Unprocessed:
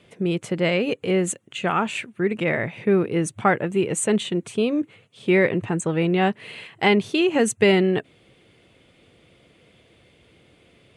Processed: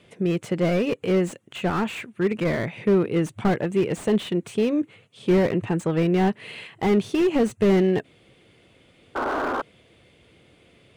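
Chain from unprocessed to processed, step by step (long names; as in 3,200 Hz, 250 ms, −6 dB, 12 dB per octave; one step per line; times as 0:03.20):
sound drawn into the spectrogram noise, 0:09.15–0:09.62, 240–1,600 Hz −24 dBFS
slew-rate limiting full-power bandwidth 69 Hz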